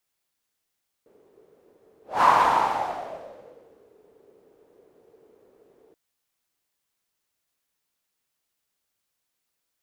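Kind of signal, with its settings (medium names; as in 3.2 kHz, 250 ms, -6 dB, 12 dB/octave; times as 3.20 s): whoosh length 4.88 s, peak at 1.17 s, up 0.22 s, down 1.81 s, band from 430 Hz, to 1 kHz, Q 5.8, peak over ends 40 dB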